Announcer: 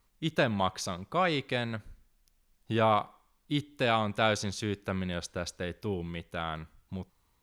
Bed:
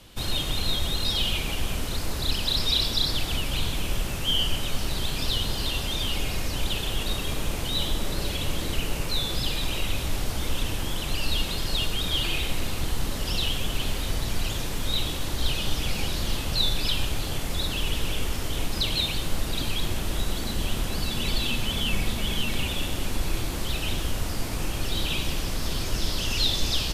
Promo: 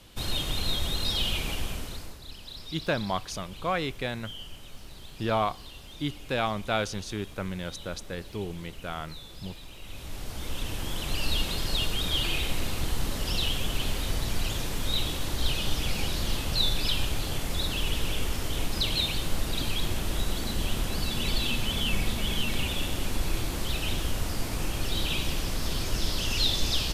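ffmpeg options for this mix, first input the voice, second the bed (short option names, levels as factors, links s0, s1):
-filter_complex "[0:a]adelay=2500,volume=0.891[s0];[1:a]volume=4.73,afade=t=out:st=1.5:d=0.69:silence=0.177828,afade=t=in:st=9.79:d=1.45:silence=0.158489[s1];[s0][s1]amix=inputs=2:normalize=0"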